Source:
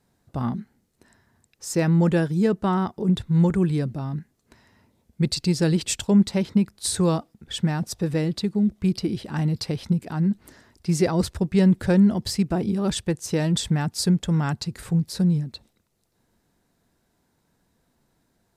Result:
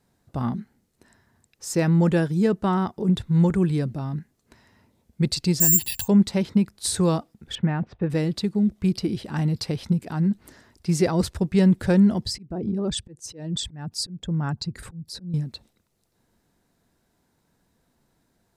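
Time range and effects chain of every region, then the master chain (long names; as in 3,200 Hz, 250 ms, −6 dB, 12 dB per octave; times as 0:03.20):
0:05.60–0:06.08: comb filter 1.1 ms, depth 60% + downward compressor 1.5 to 1, threshold −33 dBFS + bad sample-rate conversion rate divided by 6×, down filtered, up zero stuff
0:07.55–0:08.10: noise gate −43 dBFS, range −6 dB + low-pass filter 2,600 Hz 24 dB per octave
0:12.25–0:15.34: spectral envelope exaggerated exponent 1.5 + downward compressor 2 to 1, threshold −23 dBFS + volume swells 278 ms
whole clip: no processing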